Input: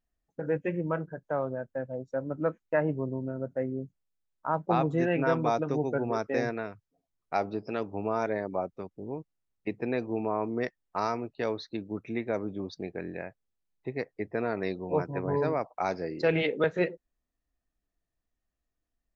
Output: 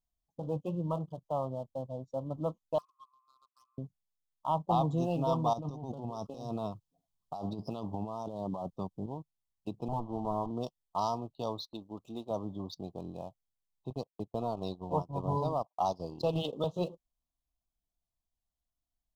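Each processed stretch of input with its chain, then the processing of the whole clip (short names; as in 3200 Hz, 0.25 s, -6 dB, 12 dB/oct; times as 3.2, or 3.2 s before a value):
2.78–3.78 G.711 law mismatch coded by A + brick-wall FIR band-pass 1000–2600 Hz + air absorption 90 m
5.53–9.06 bell 180 Hz +4 dB 1 oct + negative-ratio compressor -35 dBFS
9.88–10.51 minimum comb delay 9.1 ms + LPF 1600 Hz 24 dB/oct
11.65–12.31 gate -54 dBFS, range -9 dB + bell 130 Hz -11 dB 1.3 oct
13.9–16.53 gate -43 dBFS, range -18 dB + transient shaper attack +2 dB, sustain -9 dB
whole clip: EQ curve 150 Hz 0 dB, 430 Hz -10 dB, 720 Hz +1 dB; sample leveller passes 1; elliptic band-stop 1100–3100 Hz, stop band 40 dB; gain -3 dB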